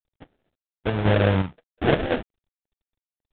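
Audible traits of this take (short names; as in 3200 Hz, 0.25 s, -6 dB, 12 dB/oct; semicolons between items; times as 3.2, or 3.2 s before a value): aliases and images of a low sample rate 1100 Hz, jitter 20%; chopped level 1.9 Hz, depth 60%, duty 70%; G.726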